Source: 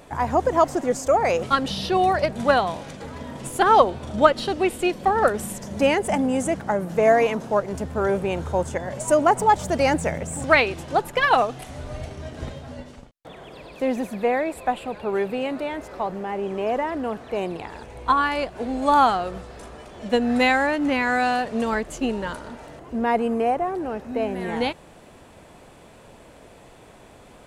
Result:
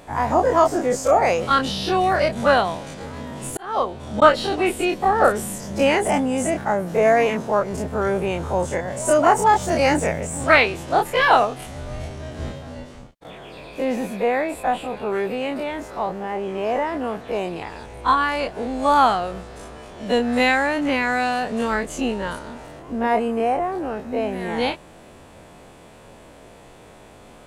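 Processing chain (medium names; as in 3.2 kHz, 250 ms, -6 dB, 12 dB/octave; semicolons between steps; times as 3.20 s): every event in the spectrogram widened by 60 ms; 3.48–4.22 s: slow attack 658 ms; trim -1.5 dB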